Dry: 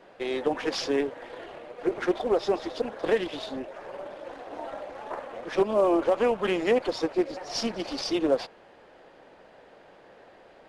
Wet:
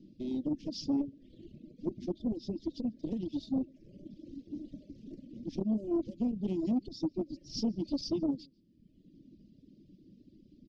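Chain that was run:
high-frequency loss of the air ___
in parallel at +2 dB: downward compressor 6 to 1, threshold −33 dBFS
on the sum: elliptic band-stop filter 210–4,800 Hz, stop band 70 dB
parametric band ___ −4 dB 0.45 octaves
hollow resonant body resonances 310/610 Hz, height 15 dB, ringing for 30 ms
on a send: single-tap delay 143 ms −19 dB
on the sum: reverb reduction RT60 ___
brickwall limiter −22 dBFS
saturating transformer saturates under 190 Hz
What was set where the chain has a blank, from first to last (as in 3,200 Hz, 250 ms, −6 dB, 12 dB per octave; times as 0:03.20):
240 metres, 4,100 Hz, 1.2 s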